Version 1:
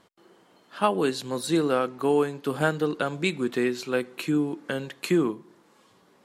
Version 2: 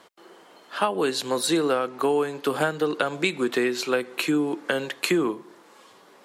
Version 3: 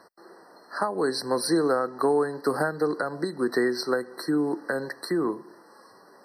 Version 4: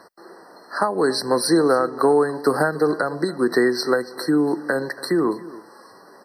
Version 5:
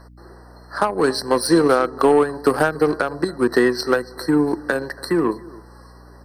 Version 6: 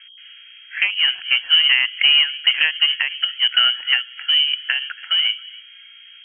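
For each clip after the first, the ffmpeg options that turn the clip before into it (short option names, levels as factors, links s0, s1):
-filter_complex "[0:a]bass=f=250:g=-14,treble=f=4000:g=-1,acrossover=split=170[s0][s1];[s1]acompressor=threshold=0.0355:ratio=6[s2];[s0][s2]amix=inputs=2:normalize=0,volume=2.82"
-af "alimiter=limit=0.251:level=0:latency=1:release=297,afftfilt=real='re*eq(mod(floor(b*sr/1024/2000),2),0)':imag='im*eq(mod(floor(b*sr/1024/2000),2),0)':win_size=1024:overlap=0.75"
-af "aecho=1:1:282:0.119,volume=2"
-af "aeval=exprs='0.531*(cos(1*acos(clip(val(0)/0.531,-1,1)))-cos(1*PI/2))+0.0299*(cos(7*acos(clip(val(0)/0.531,-1,1)))-cos(7*PI/2))':c=same,aeval=exprs='val(0)+0.00501*(sin(2*PI*60*n/s)+sin(2*PI*2*60*n/s)/2+sin(2*PI*3*60*n/s)/3+sin(2*PI*4*60*n/s)/4+sin(2*PI*5*60*n/s)/5)':c=same,volume=1.26"
-af "lowpass=f=2800:t=q:w=0.5098,lowpass=f=2800:t=q:w=0.6013,lowpass=f=2800:t=q:w=0.9,lowpass=f=2800:t=q:w=2.563,afreqshift=-3300"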